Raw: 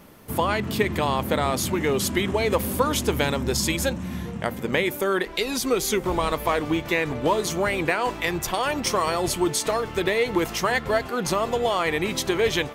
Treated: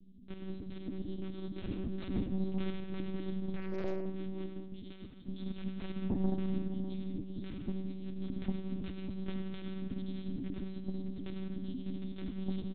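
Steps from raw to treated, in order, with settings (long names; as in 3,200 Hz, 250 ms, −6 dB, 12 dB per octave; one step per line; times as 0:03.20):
inverse Chebyshev band-stop filter 280–1,800 Hz, stop band 80 dB
0:01.64–0:02.72: low-shelf EQ 220 Hz +6 dB
0:06.87–0:07.35: compressor whose output falls as the input rises −48 dBFS, ratio −0.5
ring modulation 240 Hz
soft clipping −35 dBFS, distortion −9 dB
single-tap delay 604 ms −15 dB
convolution reverb RT60 1.4 s, pre-delay 45 ms, DRR 4 dB
one-pitch LPC vocoder at 8 kHz 190 Hz
0:03.56–0:04.06: highs frequency-modulated by the lows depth 0.74 ms
level +11 dB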